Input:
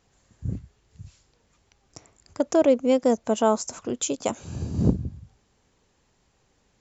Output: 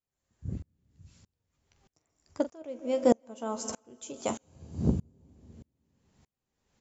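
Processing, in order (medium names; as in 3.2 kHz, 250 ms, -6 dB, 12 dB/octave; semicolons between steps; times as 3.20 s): on a send: early reflections 13 ms -10 dB, 44 ms -15.5 dB; on the sum: plate-style reverb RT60 2.3 s, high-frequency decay 1×, pre-delay 120 ms, DRR 14 dB; sawtooth tremolo in dB swelling 1.6 Hz, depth 33 dB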